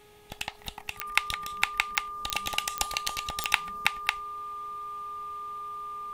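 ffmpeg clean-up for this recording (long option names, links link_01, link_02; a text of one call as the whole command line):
ffmpeg -i in.wav -af "adeclick=threshold=4,bandreject=frequency=417.3:width_type=h:width=4,bandreject=frequency=834.6:width_type=h:width=4,bandreject=frequency=1251.9:width_type=h:width=4,bandreject=frequency=1669.2:width_type=h:width=4,bandreject=frequency=1200:width=30" out.wav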